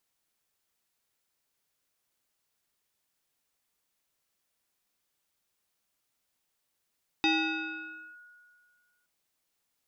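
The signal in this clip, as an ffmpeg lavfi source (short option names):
-f lavfi -i "aevalsrc='0.0891*pow(10,-3*t/1.99)*sin(2*PI*1450*t+2.2*clip(1-t/0.93,0,1)*sin(2*PI*0.78*1450*t))':d=1.82:s=44100"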